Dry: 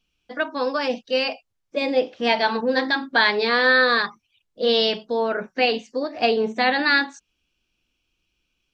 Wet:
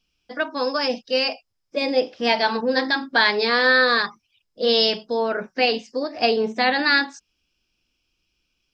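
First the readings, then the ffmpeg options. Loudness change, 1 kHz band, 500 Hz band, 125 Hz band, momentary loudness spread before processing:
+0.5 dB, 0.0 dB, 0.0 dB, n/a, 11 LU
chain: -af "equalizer=f=5.1k:w=7.9:g=14"

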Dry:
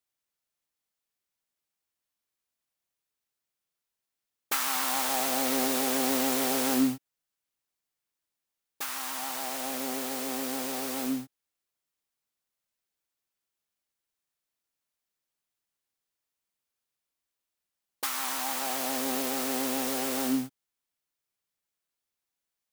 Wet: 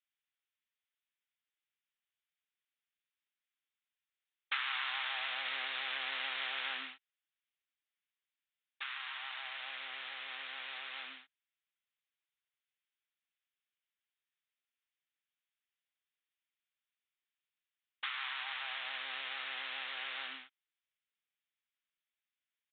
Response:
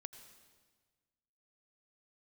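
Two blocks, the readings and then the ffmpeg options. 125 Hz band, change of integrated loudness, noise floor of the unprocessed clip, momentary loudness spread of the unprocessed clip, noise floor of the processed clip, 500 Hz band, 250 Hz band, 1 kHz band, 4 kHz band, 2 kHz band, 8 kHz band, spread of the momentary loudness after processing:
under -40 dB, -10.5 dB, under -85 dBFS, 7 LU, under -85 dBFS, -23.5 dB, -36.5 dB, -11.5 dB, -4.0 dB, -1.0 dB, under -40 dB, 8 LU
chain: -af "asuperpass=centerf=2800:order=4:qfactor=0.8,aresample=8000,aresample=44100"

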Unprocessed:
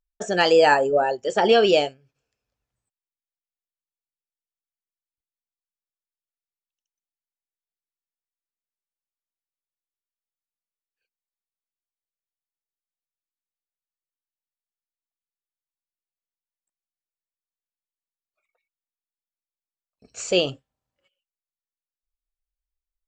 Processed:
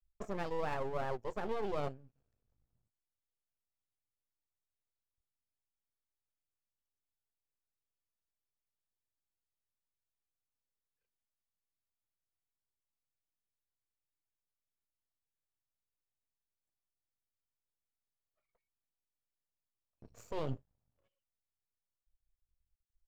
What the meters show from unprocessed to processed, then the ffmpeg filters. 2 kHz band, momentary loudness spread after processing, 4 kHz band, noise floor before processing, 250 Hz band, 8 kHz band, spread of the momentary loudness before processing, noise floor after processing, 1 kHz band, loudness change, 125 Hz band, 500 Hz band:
-23.0 dB, 7 LU, -30.0 dB, under -85 dBFS, -17.0 dB, -26.5 dB, 12 LU, under -85 dBFS, -19.0 dB, -20.5 dB, -6.5 dB, -20.5 dB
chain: -af "firequalizer=gain_entry='entry(110,0);entry(180,-9);entry(2700,-26)':delay=0.05:min_phase=1,areverse,acompressor=threshold=-41dB:ratio=6,areverse,aeval=exprs='max(val(0),0)':c=same,volume=9.5dB"

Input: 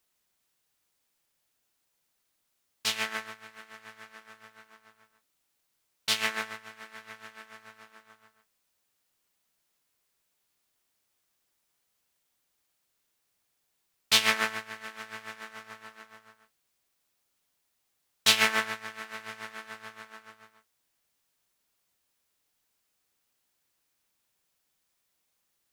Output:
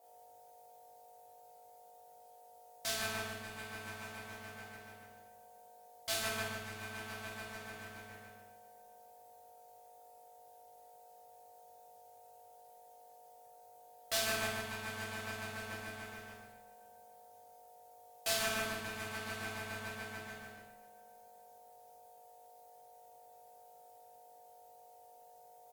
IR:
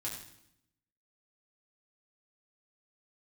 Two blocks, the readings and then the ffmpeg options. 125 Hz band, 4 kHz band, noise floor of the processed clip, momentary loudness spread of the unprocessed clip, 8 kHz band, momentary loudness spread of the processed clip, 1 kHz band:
+4.0 dB, -11.5 dB, -59 dBFS, 24 LU, -6.0 dB, 23 LU, -6.0 dB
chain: -filter_complex "[0:a]highpass=460,equalizer=f=2.4k:w=0.39:g=-12,acompressor=threshold=-53dB:ratio=2,aeval=exprs='(tanh(112*val(0)+0.7)-tanh(0.7))/112':c=same,aeval=exprs='val(0)+0.0002*(sin(2*PI*50*n/s)+sin(2*PI*2*50*n/s)/2+sin(2*PI*3*50*n/s)/3+sin(2*PI*4*50*n/s)/4+sin(2*PI*5*50*n/s)/5)':c=same,aeval=exprs='val(0)*sin(2*PI*670*n/s)':c=same,asplit=2[a][b];[b]adelay=49,volume=-7dB[c];[a][c]amix=inputs=2:normalize=0,asplit=2[d][e];[e]adelay=547,lowpass=f=2k:p=1,volume=-21dB,asplit=2[f][g];[g]adelay=547,lowpass=f=2k:p=1,volume=0.36,asplit=2[h][i];[i]adelay=547,lowpass=f=2k:p=1,volume=0.36[j];[d][f][h][j]amix=inputs=4:normalize=0[k];[1:a]atrim=start_sample=2205,asetrate=40572,aresample=44100[l];[k][l]afir=irnorm=-1:irlink=0,volume=17dB"

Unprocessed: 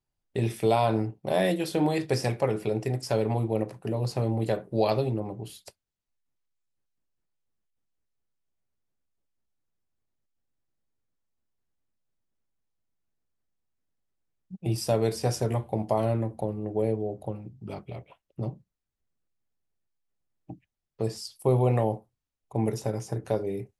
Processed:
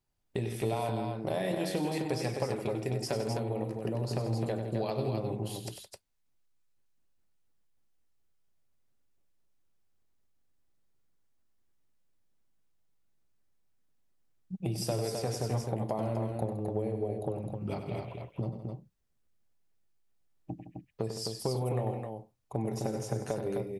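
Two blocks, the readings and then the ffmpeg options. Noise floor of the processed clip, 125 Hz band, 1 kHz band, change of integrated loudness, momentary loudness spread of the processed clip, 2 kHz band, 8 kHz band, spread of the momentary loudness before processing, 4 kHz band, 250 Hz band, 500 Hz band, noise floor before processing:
-73 dBFS, -5.0 dB, -6.5 dB, -6.0 dB, 10 LU, -5.5 dB, -2.0 dB, 15 LU, -3.0 dB, -5.0 dB, -6.0 dB, -85 dBFS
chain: -af "acompressor=threshold=-33dB:ratio=6,aecho=1:1:96.21|163.3|259.5:0.355|0.251|0.562,volume=2.5dB"

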